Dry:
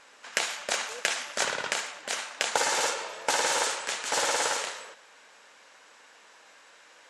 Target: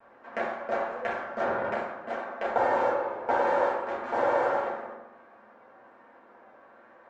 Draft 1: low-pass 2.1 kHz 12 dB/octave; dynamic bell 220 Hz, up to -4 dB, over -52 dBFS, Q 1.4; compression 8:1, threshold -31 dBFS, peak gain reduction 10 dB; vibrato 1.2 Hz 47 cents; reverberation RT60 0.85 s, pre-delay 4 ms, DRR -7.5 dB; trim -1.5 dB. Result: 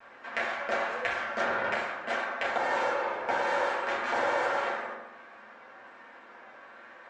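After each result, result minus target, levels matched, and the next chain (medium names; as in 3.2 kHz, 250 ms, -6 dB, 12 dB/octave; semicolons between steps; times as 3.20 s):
compression: peak gain reduction +10 dB; 2 kHz band +6.0 dB
low-pass 2.1 kHz 12 dB/octave; dynamic bell 220 Hz, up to -4 dB, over -52 dBFS, Q 1.4; vibrato 1.2 Hz 47 cents; reverberation RT60 0.85 s, pre-delay 4 ms, DRR -7.5 dB; trim -1.5 dB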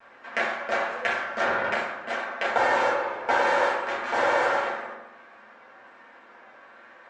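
2 kHz band +5.5 dB
low-pass 930 Hz 12 dB/octave; dynamic bell 220 Hz, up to -4 dB, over -52 dBFS, Q 1.4; vibrato 1.2 Hz 47 cents; reverberation RT60 0.85 s, pre-delay 4 ms, DRR -7.5 dB; trim -1.5 dB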